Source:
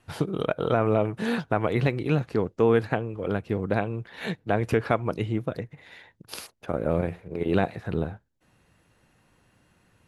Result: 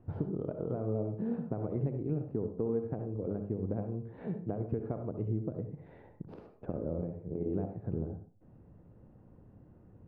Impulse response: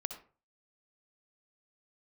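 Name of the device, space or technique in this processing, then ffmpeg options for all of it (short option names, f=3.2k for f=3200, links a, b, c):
television next door: -filter_complex "[0:a]acompressor=threshold=-43dB:ratio=3,lowpass=450[a];[1:a]atrim=start_sample=2205[b];[a][b]afir=irnorm=-1:irlink=0,volume=8.5dB"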